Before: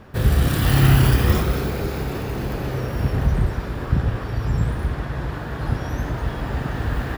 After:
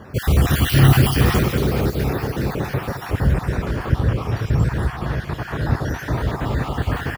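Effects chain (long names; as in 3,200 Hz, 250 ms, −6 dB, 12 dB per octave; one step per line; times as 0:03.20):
time-frequency cells dropped at random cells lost 35%
high-pass filter 62 Hz
in parallel at −9 dB: hard clipping −19.5 dBFS, distortion −8 dB
on the sum: repeating echo 213 ms, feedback 39%, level −11 dB
level +2.5 dB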